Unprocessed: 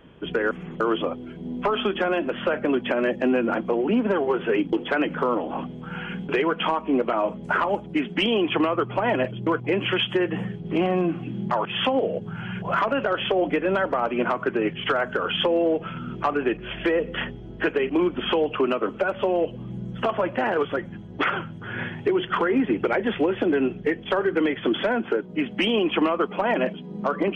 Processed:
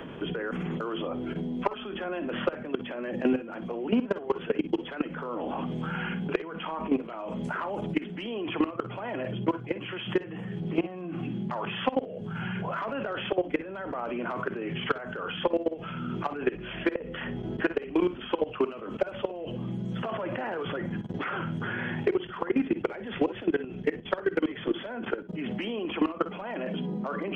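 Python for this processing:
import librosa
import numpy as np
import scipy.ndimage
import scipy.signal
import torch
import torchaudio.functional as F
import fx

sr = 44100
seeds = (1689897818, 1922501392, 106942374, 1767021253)

y = fx.level_steps(x, sr, step_db=20)
y = fx.room_early_taps(y, sr, ms=(50, 62), db=(-16.0, -16.5))
y = fx.band_squash(y, sr, depth_pct=70)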